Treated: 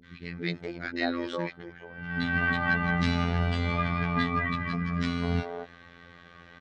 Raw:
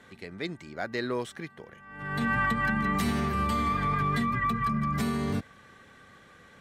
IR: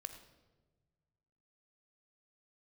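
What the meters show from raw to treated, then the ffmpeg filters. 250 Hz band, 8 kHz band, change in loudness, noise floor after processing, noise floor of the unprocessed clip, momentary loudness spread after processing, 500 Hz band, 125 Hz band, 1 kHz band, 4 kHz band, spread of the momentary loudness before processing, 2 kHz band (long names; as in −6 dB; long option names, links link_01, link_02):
0.0 dB, can't be measured, 0.0 dB, −52 dBFS, −55 dBFS, 14 LU, +0.5 dB, +2.5 dB, −4.5 dB, +3.0 dB, 14 LU, +2.5 dB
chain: -filter_complex "[0:a]lowpass=frequency=4900:width=0.5412,lowpass=frequency=4900:width=1.3066,acrossover=split=370|1200[link_01][link_02][link_03];[link_03]adelay=40[link_04];[link_02]adelay=240[link_05];[link_01][link_05][link_04]amix=inputs=3:normalize=0,afftfilt=real='hypot(re,im)*cos(PI*b)':imag='0':win_size=2048:overlap=0.75,volume=7.5dB"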